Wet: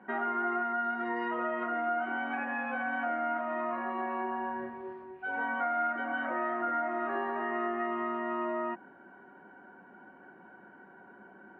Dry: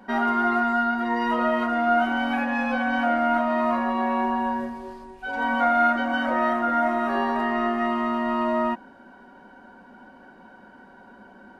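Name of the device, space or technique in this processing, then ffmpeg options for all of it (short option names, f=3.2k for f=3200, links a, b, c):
bass amplifier: -filter_complex "[0:a]asettb=1/sr,asplit=3[a][b][c];[a]atrim=end=0.844[d];[b]atrim=start=0.84:end=1.29,asetpts=PTS-STARTPTS,afade=t=in:d=0.004:c=qsin,afade=t=out:st=0.446:d=0.004:c=qsin,bass=f=250:g=2,treble=f=4k:g=12[e];[c]atrim=start=1.286[f];[d][e]acrossfade=d=0.004:c1=hsin:c2=qsin[g];[g][f]acrossfade=d=0.004:c1=qsin:c2=hsin,acompressor=threshold=-24dB:ratio=4,highpass=f=88:w=0.5412,highpass=f=88:w=1.3066,equalizer=f=98:t=q:w=4:g=-8,equalizer=f=240:t=q:w=4:g=-9,equalizer=f=360:t=q:w=4:g=4,equalizer=f=550:t=q:w=4:g=-6,equalizer=f=950:t=q:w=4:g=-4,lowpass=f=2.3k:w=0.5412,lowpass=f=2.3k:w=1.3066,volume=-3dB"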